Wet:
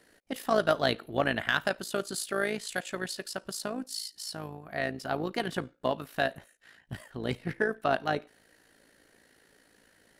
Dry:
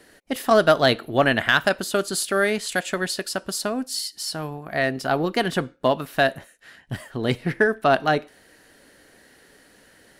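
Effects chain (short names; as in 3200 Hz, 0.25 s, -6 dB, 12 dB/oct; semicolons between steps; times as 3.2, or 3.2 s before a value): AM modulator 55 Hz, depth 45%; gain -6.5 dB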